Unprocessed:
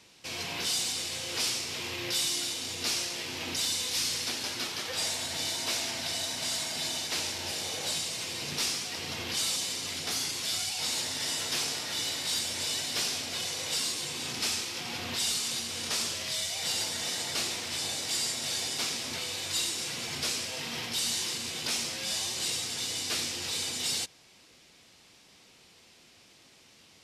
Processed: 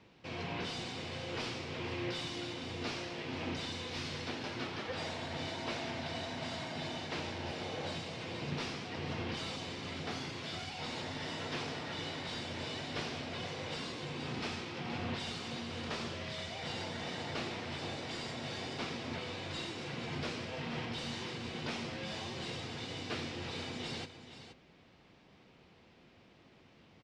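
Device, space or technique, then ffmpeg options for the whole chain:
phone in a pocket: -af "lowpass=3400,equalizer=frequency=150:width_type=o:width=0.77:gain=2,lowshelf=frequency=380:gain=3,highshelf=frequency=2200:gain=-10,aecho=1:1:473:0.266"

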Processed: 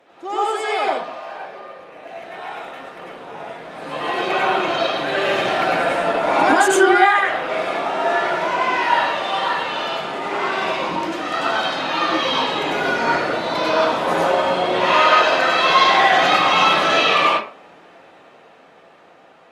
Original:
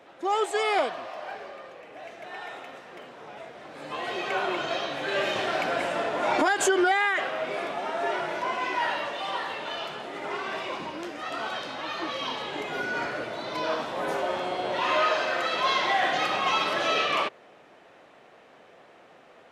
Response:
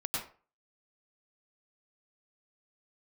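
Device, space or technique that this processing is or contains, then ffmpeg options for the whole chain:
far-field microphone of a smart speaker: -filter_complex "[1:a]atrim=start_sample=2205[link_01];[0:a][link_01]afir=irnorm=-1:irlink=0,highpass=frequency=97:poles=1,dynaudnorm=framelen=550:gausssize=9:maxgain=10.5dB" -ar 48000 -c:a libopus -b:a 48k

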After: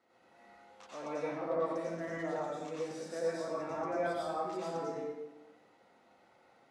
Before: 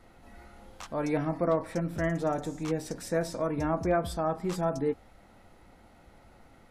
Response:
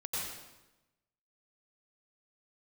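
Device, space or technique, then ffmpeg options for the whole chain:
supermarket ceiling speaker: -filter_complex "[0:a]highpass=300,lowpass=6800[link_01];[1:a]atrim=start_sample=2205[link_02];[link_01][link_02]afir=irnorm=-1:irlink=0,volume=-8.5dB"

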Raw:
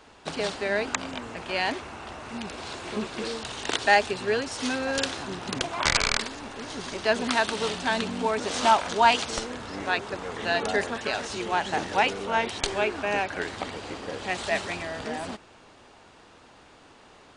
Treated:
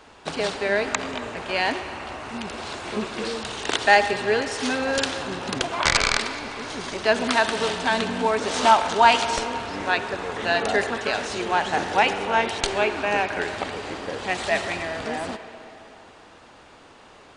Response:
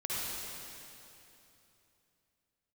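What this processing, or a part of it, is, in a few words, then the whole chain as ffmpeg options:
filtered reverb send: -filter_complex "[0:a]asplit=2[link_01][link_02];[link_02]highpass=300,lowpass=3700[link_03];[1:a]atrim=start_sample=2205[link_04];[link_03][link_04]afir=irnorm=-1:irlink=0,volume=-12.5dB[link_05];[link_01][link_05]amix=inputs=2:normalize=0,volume=2.5dB"

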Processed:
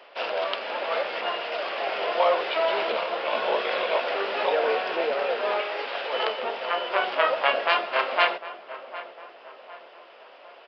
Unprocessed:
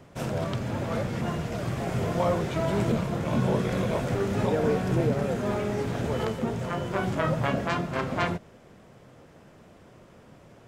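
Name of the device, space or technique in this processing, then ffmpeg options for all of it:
musical greeting card: -filter_complex "[0:a]asettb=1/sr,asplit=3[link_01][link_02][link_03];[link_01]atrim=end=5.614[link_04];[link_02]atrim=start=5.61:end=6.13,asetpts=PTS-STARTPTS,afade=type=in:duration=0.004:curve=qsin,afade=type=out:start_time=0.516:duration=0.004:curve=qsin,highpass=frequency=700:poles=1[link_05];[link_03]atrim=start=6.126[link_06];[link_04][link_05]acrossfade=duration=0.004:curve1=hsin:curve2=qsin[link_07];[link_07][link_06]acrossfade=duration=0.004:curve1=qsin:curve2=hsin,aresample=11025,aresample=44100,highpass=frequency=520:width=0.5412,highpass=frequency=520:width=1.3066,equalizer=frequency=2800:width_type=o:width=0.45:gain=8,asplit=2[link_08][link_09];[link_09]adelay=754,lowpass=frequency=1800:poles=1,volume=-14dB,asplit=2[link_10][link_11];[link_11]adelay=754,lowpass=frequency=1800:poles=1,volume=0.5,asplit=2[link_12][link_13];[link_13]adelay=754,lowpass=frequency=1800:poles=1,volume=0.5,asplit=2[link_14][link_15];[link_15]adelay=754,lowpass=frequency=1800:poles=1,volume=0.5,asplit=2[link_16][link_17];[link_17]adelay=754,lowpass=frequency=1800:poles=1,volume=0.5[link_18];[link_08][link_10][link_12][link_14][link_16][link_18]amix=inputs=6:normalize=0,volume=6.5dB"

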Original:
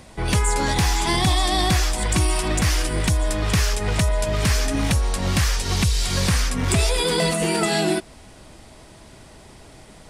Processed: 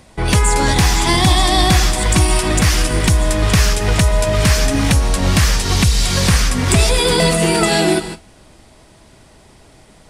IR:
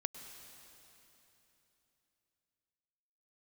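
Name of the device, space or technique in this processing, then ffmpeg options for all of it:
keyed gated reverb: -filter_complex "[0:a]asplit=3[link_01][link_02][link_03];[1:a]atrim=start_sample=2205[link_04];[link_02][link_04]afir=irnorm=-1:irlink=0[link_05];[link_03]apad=whole_len=445031[link_06];[link_05][link_06]sidechaingate=range=-33dB:threshold=-39dB:ratio=16:detection=peak,volume=4dB[link_07];[link_01][link_07]amix=inputs=2:normalize=0,volume=-1dB"

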